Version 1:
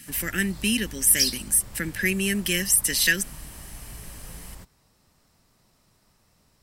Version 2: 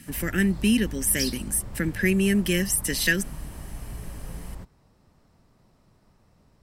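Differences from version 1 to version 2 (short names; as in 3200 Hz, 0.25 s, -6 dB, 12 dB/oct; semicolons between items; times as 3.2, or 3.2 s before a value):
background: add high shelf 6800 Hz -6.5 dB; master: add tilt shelf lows +5.5 dB, about 1400 Hz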